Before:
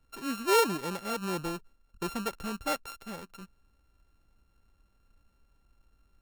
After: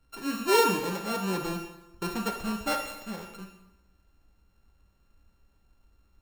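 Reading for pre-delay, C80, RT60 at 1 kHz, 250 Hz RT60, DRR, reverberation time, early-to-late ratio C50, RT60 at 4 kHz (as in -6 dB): 5 ms, 9.0 dB, 0.95 s, 1.0 s, 2.5 dB, 0.95 s, 6.5 dB, 0.90 s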